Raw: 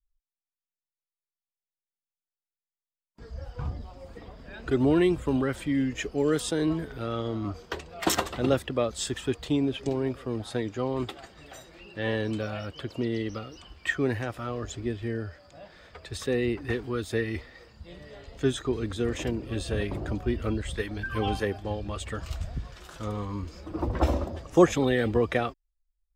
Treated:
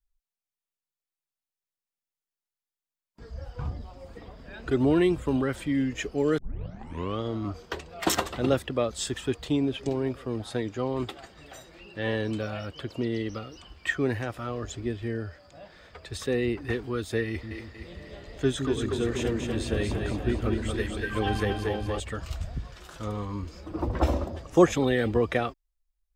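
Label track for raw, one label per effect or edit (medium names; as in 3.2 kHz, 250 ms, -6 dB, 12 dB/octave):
6.380000	6.380000	tape start 0.83 s
17.270000	22.000000	two-band feedback delay split 300 Hz, lows 160 ms, highs 236 ms, level -4 dB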